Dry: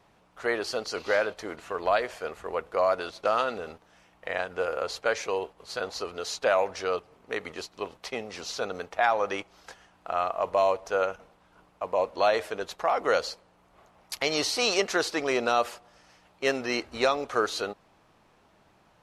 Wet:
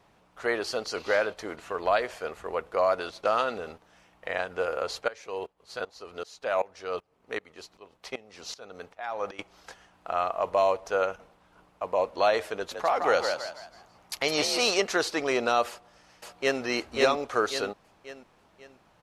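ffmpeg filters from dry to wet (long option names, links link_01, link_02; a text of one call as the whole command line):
ffmpeg -i in.wav -filter_complex "[0:a]asettb=1/sr,asplit=3[link_01][link_02][link_03];[link_01]atrim=end=5.084[link_04];[link_02]atrim=start=5.08:end=9.39,asetpts=PTS-STARTPTS,afade=type=in:duration=0.004:curve=qsin,afade=type=out:start_time=4.306:duration=0.004:curve=qsin,aeval=exprs='val(0)*pow(10,-19*if(lt(mod(-2.6*n/s,1),2*abs(-2.6)/1000),1-mod(-2.6*n/s,1)/(2*abs(-2.6)/1000),(mod(-2.6*n/s,1)-2*abs(-2.6)/1000)/(1-2*abs(-2.6)/1000))/20)':channel_layout=same[link_05];[link_03]atrim=start=9.386[link_06];[link_04][link_05]acrossfade=duration=0.004:curve1=hsin:curve2=qsin[link_07];[link_07][link_06]acrossfade=duration=0.004:curve1=qsin:curve2=hsin,asettb=1/sr,asplit=3[link_08][link_09][link_10];[link_08]atrim=end=12.554[link_11];[link_09]atrim=start=12.55:end=14.71,asetpts=PTS-STARTPTS,afade=type=in:duration=0.004:curve=qsin,afade=type=out:start_time=2.156:duration=0.004:curve=qsin,asplit=5[link_12][link_13][link_14][link_15][link_16];[link_13]adelay=163,afreqshift=53,volume=-5.5dB[link_17];[link_14]adelay=326,afreqshift=106,volume=-14.4dB[link_18];[link_15]adelay=489,afreqshift=159,volume=-23.2dB[link_19];[link_16]adelay=652,afreqshift=212,volume=-32.1dB[link_20];[link_12][link_17][link_18][link_19][link_20]amix=inputs=5:normalize=0,atrim=end_sample=95256[link_21];[link_10]atrim=start=14.706[link_22];[link_11][link_21]acrossfade=duration=0.004:curve1=hsin:curve2=qsin[link_23];[link_23][link_22]acrossfade=duration=0.004:curve1=qsin:curve2=hsin,asplit=2[link_24][link_25];[link_25]afade=type=in:start_time=15.68:duration=0.01,afade=type=out:start_time=16.61:duration=0.01,aecho=0:1:540|1080|1620|2160|2700:0.841395|0.336558|0.134623|0.0538493|0.0215397[link_26];[link_24][link_26]amix=inputs=2:normalize=0" out.wav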